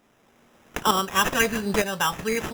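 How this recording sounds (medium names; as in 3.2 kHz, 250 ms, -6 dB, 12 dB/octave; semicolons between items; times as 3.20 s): a quantiser's noise floor 10-bit, dither none; tremolo saw up 1.1 Hz, depth 65%; aliases and images of a low sample rate 4.4 kHz, jitter 0%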